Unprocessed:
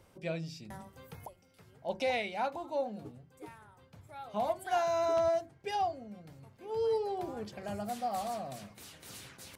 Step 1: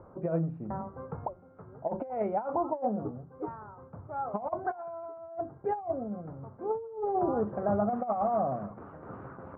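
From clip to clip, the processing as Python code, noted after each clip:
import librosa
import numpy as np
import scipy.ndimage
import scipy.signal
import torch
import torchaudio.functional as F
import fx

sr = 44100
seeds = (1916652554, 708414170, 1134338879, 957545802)

y = scipy.signal.sosfilt(scipy.signal.ellip(4, 1.0, 80, 1300.0, 'lowpass', fs=sr, output='sos'), x)
y = fx.low_shelf(y, sr, hz=130.0, db=-5.5)
y = fx.over_compress(y, sr, threshold_db=-38.0, ratio=-0.5)
y = y * librosa.db_to_amplitude(8.0)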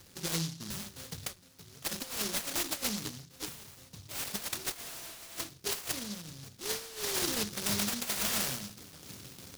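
y = fx.noise_mod_delay(x, sr, seeds[0], noise_hz=4700.0, depth_ms=0.47)
y = y * librosa.db_to_amplitude(-4.0)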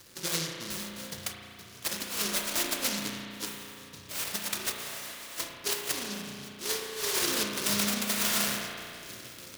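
y = fx.low_shelf(x, sr, hz=260.0, db=-9.0)
y = fx.notch(y, sr, hz=790.0, q=12.0)
y = fx.rev_spring(y, sr, rt60_s=2.6, pass_ms=(34,), chirp_ms=55, drr_db=1.0)
y = y * librosa.db_to_amplitude(3.5)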